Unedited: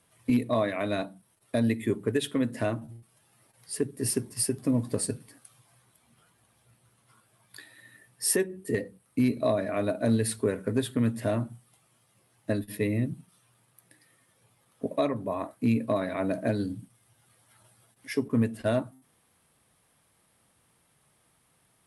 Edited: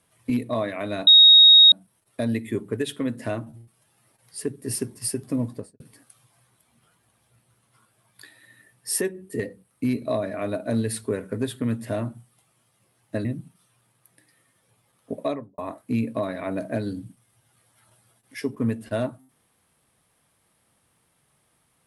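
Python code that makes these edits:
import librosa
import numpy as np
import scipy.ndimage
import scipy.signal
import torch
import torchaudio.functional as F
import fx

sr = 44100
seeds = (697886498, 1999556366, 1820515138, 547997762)

y = fx.studio_fade_out(x, sr, start_s=4.76, length_s=0.39)
y = fx.studio_fade_out(y, sr, start_s=14.97, length_s=0.34)
y = fx.edit(y, sr, fx.insert_tone(at_s=1.07, length_s=0.65, hz=3760.0, db=-8.0),
    fx.cut(start_s=12.6, length_s=0.38), tone=tone)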